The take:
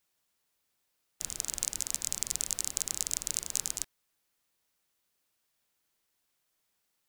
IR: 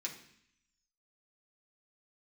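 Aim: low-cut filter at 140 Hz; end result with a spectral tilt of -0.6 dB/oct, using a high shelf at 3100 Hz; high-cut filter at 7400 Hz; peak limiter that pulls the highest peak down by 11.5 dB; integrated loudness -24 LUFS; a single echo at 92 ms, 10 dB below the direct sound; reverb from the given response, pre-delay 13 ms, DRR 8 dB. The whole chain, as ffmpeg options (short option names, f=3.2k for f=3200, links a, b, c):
-filter_complex "[0:a]highpass=140,lowpass=7.4k,highshelf=f=3.1k:g=7,alimiter=limit=-13.5dB:level=0:latency=1,aecho=1:1:92:0.316,asplit=2[a][b];[1:a]atrim=start_sample=2205,adelay=13[c];[b][c]afir=irnorm=-1:irlink=0,volume=-7.5dB[d];[a][d]amix=inputs=2:normalize=0,volume=11.5dB"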